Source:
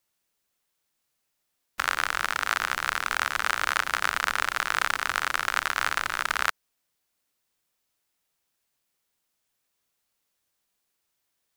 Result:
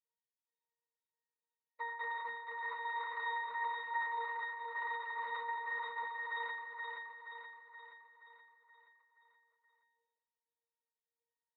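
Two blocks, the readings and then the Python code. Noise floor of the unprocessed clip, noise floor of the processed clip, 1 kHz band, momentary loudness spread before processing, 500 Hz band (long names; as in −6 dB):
−78 dBFS, below −85 dBFS, −9.5 dB, 2 LU, −9.5 dB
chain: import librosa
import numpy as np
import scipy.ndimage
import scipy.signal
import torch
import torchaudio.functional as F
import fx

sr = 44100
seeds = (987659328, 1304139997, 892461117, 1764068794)

p1 = fx.sine_speech(x, sr)
p2 = fx.noise_vocoder(p1, sr, seeds[0], bands=6)
p3 = scipy.signal.sosfilt(scipy.signal.butter(2, 2700.0, 'lowpass', fs=sr, output='sos'), p2)
p4 = fx.notch_comb(p3, sr, f0_hz=260.0)
p5 = fx.step_gate(p4, sr, bpm=98, pattern='x..xxxxx.x.x.x', floor_db=-12.0, edge_ms=4.5)
p6 = fx.octave_resonator(p5, sr, note='A#', decay_s=0.41)
p7 = p6 + fx.echo_feedback(p6, sr, ms=475, feedback_pct=54, wet_db=-4, dry=0)
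p8 = fx.sustainer(p7, sr, db_per_s=49.0)
y = F.gain(torch.from_numpy(p8), 8.5).numpy()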